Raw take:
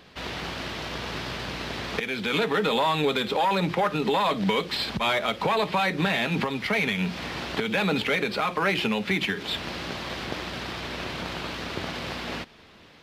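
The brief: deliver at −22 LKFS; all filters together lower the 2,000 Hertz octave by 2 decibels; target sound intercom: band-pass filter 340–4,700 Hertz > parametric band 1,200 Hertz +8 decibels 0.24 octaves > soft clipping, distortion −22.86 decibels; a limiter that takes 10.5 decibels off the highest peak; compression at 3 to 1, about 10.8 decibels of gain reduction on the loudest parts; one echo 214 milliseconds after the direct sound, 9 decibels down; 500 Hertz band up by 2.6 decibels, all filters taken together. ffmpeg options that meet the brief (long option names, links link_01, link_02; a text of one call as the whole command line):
ffmpeg -i in.wav -af "equalizer=frequency=500:width_type=o:gain=4.5,equalizer=frequency=2000:width_type=o:gain=-3,acompressor=threshold=-33dB:ratio=3,alimiter=level_in=4dB:limit=-24dB:level=0:latency=1,volume=-4dB,highpass=340,lowpass=4700,equalizer=frequency=1200:width_type=o:width=0.24:gain=8,aecho=1:1:214:0.355,asoftclip=threshold=-27dB,volume=15.5dB" out.wav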